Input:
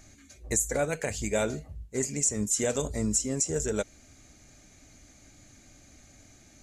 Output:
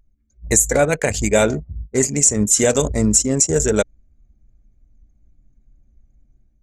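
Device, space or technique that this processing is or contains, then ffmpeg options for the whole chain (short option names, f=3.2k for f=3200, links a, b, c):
voice memo with heavy noise removal: -af "anlmdn=1.58,dynaudnorm=f=180:g=3:m=9dB,volume=3.5dB"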